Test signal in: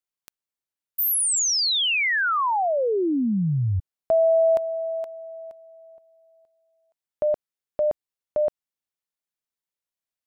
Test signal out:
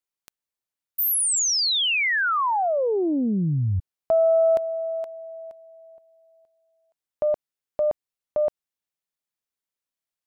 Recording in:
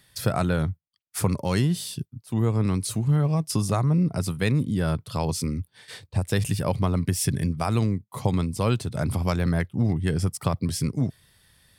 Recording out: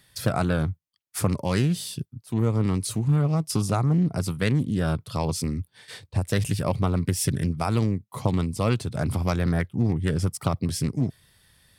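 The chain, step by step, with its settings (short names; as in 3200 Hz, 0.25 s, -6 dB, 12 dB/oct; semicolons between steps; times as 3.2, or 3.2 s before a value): Doppler distortion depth 0.29 ms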